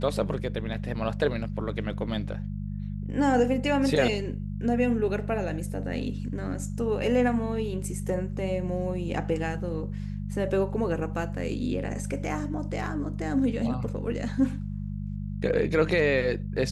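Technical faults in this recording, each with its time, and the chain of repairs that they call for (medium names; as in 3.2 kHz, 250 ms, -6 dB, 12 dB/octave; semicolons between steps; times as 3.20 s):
hum 50 Hz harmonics 4 -33 dBFS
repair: de-hum 50 Hz, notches 4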